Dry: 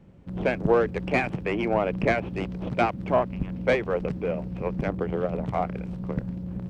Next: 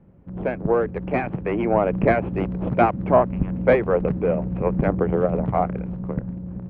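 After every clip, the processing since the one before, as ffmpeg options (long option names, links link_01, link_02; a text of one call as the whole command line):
ffmpeg -i in.wav -af "dynaudnorm=framelen=610:gausssize=5:maxgain=11.5dB,lowpass=1600" out.wav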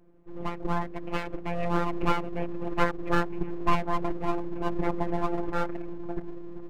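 ffmpeg -i in.wav -af "afftfilt=real='hypot(re,im)*cos(PI*b)':imag='0':win_size=1024:overlap=0.75,aeval=exprs='abs(val(0))':channel_layout=same,volume=-2.5dB" out.wav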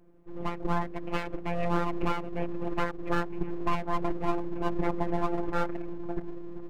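ffmpeg -i in.wav -af "alimiter=limit=-13dB:level=0:latency=1:release=346" out.wav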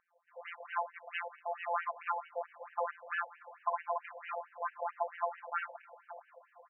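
ffmpeg -i in.wav -af "aecho=1:1:125|250|375|500:0.1|0.048|0.023|0.0111,afftfilt=real='re*between(b*sr/1024,660*pow(2200/660,0.5+0.5*sin(2*PI*4.5*pts/sr))/1.41,660*pow(2200/660,0.5+0.5*sin(2*PI*4.5*pts/sr))*1.41)':imag='im*between(b*sr/1024,660*pow(2200/660,0.5+0.5*sin(2*PI*4.5*pts/sr))/1.41,660*pow(2200/660,0.5+0.5*sin(2*PI*4.5*pts/sr))*1.41)':win_size=1024:overlap=0.75,volume=1dB" out.wav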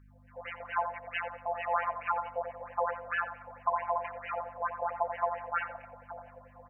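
ffmpeg -i in.wav -filter_complex "[0:a]aeval=exprs='val(0)+0.001*(sin(2*PI*50*n/s)+sin(2*PI*2*50*n/s)/2+sin(2*PI*3*50*n/s)/3+sin(2*PI*4*50*n/s)/4+sin(2*PI*5*50*n/s)/5)':channel_layout=same,asplit=2[link_01][link_02];[link_02]adelay=88,lowpass=frequency=860:poles=1,volume=-5.5dB,asplit=2[link_03][link_04];[link_04]adelay=88,lowpass=frequency=860:poles=1,volume=0.43,asplit=2[link_05][link_06];[link_06]adelay=88,lowpass=frequency=860:poles=1,volume=0.43,asplit=2[link_07][link_08];[link_08]adelay=88,lowpass=frequency=860:poles=1,volume=0.43,asplit=2[link_09][link_10];[link_10]adelay=88,lowpass=frequency=860:poles=1,volume=0.43[link_11];[link_03][link_05][link_07][link_09][link_11]amix=inputs=5:normalize=0[link_12];[link_01][link_12]amix=inputs=2:normalize=0,volume=4dB" out.wav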